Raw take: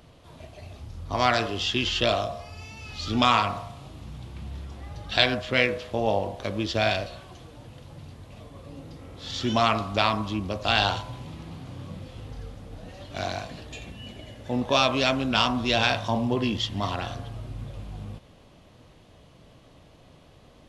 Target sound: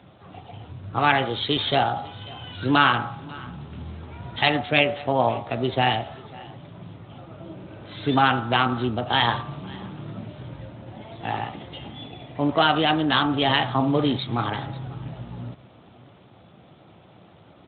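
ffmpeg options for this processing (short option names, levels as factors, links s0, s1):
-af "aecho=1:1:634:0.0841,asetrate=51597,aresample=44100,volume=1.5" -ar 8000 -c:a libspeex -b:a 15k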